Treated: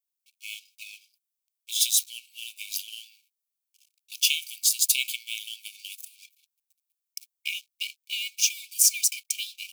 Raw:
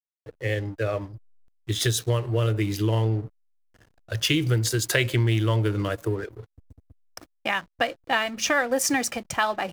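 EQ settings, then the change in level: brick-wall FIR high-pass 2.2 kHz; tilt EQ +4.5 dB/octave; -6.0 dB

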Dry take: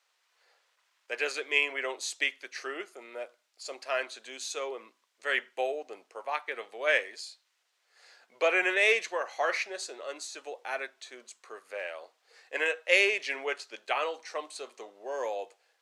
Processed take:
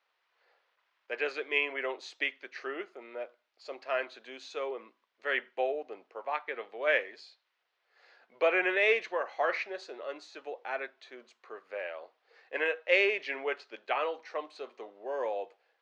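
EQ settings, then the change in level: distance through air 250 m; bass shelf 400 Hz +3 dB; 0.0 dB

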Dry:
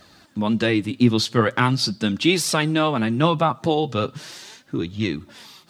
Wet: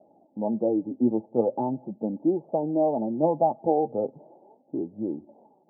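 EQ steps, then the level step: high-pass 390 Hz 12 dB/octave; rippled Chebyshev low-pass 860 Hz, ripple 3 dB; distance through air 390 m; +3.5 dB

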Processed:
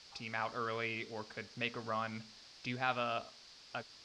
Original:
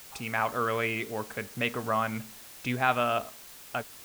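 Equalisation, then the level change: four-pole ladder low-pass 5.3 kHz, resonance 65%; +1.0 dB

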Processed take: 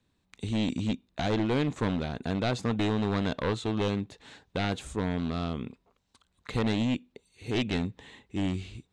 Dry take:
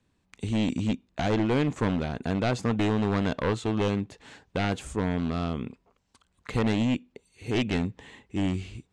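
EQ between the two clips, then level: peaking EQ 3.8 kHz +7 dB 0.28 oct; -2.5 dB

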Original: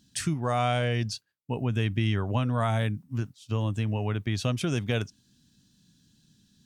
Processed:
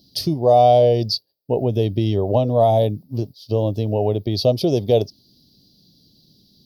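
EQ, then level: FFT filter 240 Hz 0 dB, 390 Hz +10 dB, 630 Hz +12 dB, 1.4 kHz -18 dB, 2.6 kHz -11 dB, 4.8 kHz +13 dB, 7.7 kHz -22 dB, 12 kHz +9 dB; dynamic bell 800 Hz, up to +4 dB, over -31 dBFS, Q 2; peaking EQ 1.5 kHz -10.5 dB 0.37 oct; +5.0 dB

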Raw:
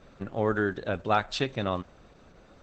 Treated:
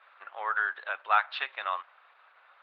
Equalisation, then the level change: high-pass 1 kHz 24 dB/octave; low-pass 4.2 kHz 24 dB/octave; distance through air 400 m; +7.5 dB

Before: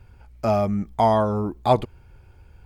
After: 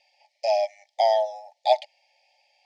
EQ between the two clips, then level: brick-wall FIR high-pass 540 Hz; Chebyshev band-stop 870–1800 Hz, order 5; resonant low-pass 5.1 kHz, resonance Q 3.4; 0.0 dB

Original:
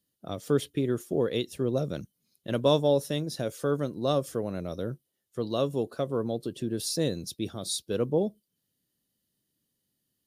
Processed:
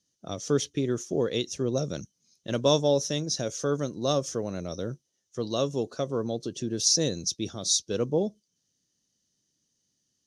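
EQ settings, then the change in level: resonant low-pass 6.1 kHz, resonance Q 9.3; 0.0 dB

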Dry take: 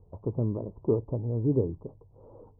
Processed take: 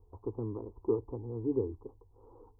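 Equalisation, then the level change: peaking EQ 190 Hz -5.5 dB 1.9 oct; static phaser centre 600 Hz, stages 6; 0.0 dB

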